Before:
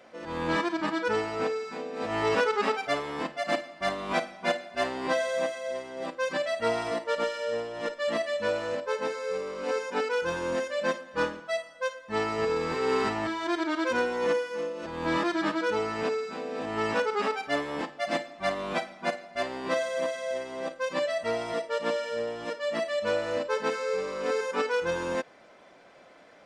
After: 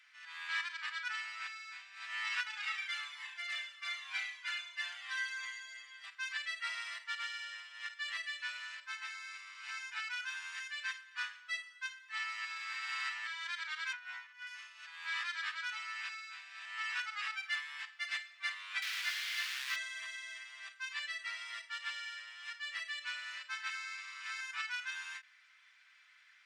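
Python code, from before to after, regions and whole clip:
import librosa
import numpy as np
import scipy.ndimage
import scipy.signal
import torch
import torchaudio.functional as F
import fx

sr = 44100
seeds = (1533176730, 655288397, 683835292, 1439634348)

y = fx.chain(x, sr, fx.room_flutter(wall_m=5.9, rt60_s=0.71),
    fx.comb_cascade(direction='falling', hz=1.3), at=(2.43, 6.04))
y = fx.chain(y, sr, fx.lowpass(hz=1800.0, slope=6),
    fx.over_compress(threshold_db=-31.0, ratio=-0.5),
    fx.low_shelf(hz=270.0, db=9.0), at=(13.93, 14.47))
y = fx.chain(y, sr, fx.delta_mod(bps=32000, step_db=-25.5),
    fx.highpass(hz=440.0, slope=24),
    fx.sample_gate(floor_db=-33.5), at=(18.82, 19.76))
y = scipy.signal.sosfilt(scipy.signal.cheby2(4, 60, 520.0, 'highpass', fs=sr, output='sos'), y)
y = fx.high_shelf(y, sr, hz=3400.0, db=-10.0)
y = fx.end_taper(y, sr, db_per_s=290.0)
y = F.gain(torch.from_numpy(y), 2.0).numpy()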